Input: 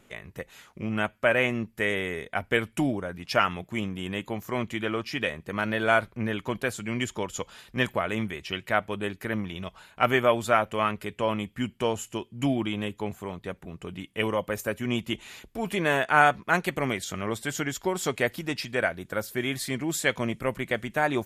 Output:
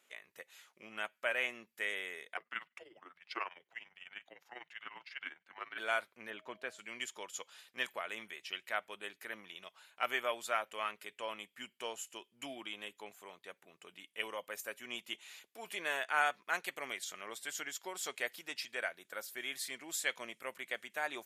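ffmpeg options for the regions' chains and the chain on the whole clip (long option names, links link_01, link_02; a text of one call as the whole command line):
ffmpeg -i in.wav -filter_complex "[0:a]asettb=1/sr,asplit=3[link_01][link_02][link_03];[link_01]atrim=end=2.374[link_04];[link_02]atrim=start=2.37:end=5.78,asetpts=PTS-STARTPTS,afade=type=in:duration=0.004:curve=qsin,afade=type=out:start_time=3.406:duration=0.004:curve=qsin,afreqshift=-260,tremolo=f=20:d=0.72,acrossover=split=230 4200:gain=0.251 1 0.0794[link_05][link_06][link_07];[link_05][link_06][link_07]amix=inputs=3:normalize=0[link_08];[link_03]atrim=start=5.776[link_09];[link_04][link_08]acrossfade=duration=0.004:curve1=hsin:curve2=qsin[link_10];[link_10][link_09]acrossfade=duration=0.004:curve1=qsin:curve2=hsin,asettb=1/sr,asplit=3[link_11][link_12][link_13];[link_11]atrim=end=6.304[link_14];[link_12]atrim=start=6.3:end=6.79,asetpts=PTS-STARTPTS,afade=type=in:duration=0.004:curve=qsin,afade=type=out:start_time=0.486:duration=0.004:curve=qsin,highpass=frequency=320:poles=1,aemphasis=mode=reproduction:type=riaa,aeval=exprs='val(0)+0.00316*sin(2*PI*630*n/s)':channel_layout=same[link_15];[link_13]atrim=start=6.786[link_16];[link_14][link_15]acrossfade=duration=0.004:curve1=hsin:curve2=qsin[link_17];[link_17][link_16]acrossfade=duration=0.004:curve1=qsin:curve2=hsin,highpass=730,equalizer=frequency=970:width_type=o:width=1.9:gain=-5.5,volume=-6.5dB" out.wav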